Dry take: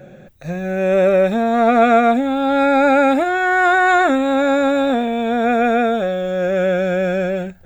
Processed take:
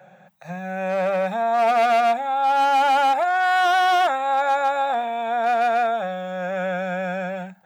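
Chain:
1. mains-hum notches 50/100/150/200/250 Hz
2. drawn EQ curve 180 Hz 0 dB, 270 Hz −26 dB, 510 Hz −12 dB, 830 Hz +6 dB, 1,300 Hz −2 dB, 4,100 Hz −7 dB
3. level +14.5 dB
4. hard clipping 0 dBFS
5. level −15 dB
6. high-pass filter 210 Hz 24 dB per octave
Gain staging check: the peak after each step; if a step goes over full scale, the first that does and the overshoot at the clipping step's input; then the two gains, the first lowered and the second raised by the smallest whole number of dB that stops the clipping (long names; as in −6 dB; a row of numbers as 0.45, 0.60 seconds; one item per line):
−3.5, −6.0, +8.5, 0.0, −15.0, −10.0 dBFS
step 3, 8.5 dB
step 3 +5.5 dB, step 5 −6 dB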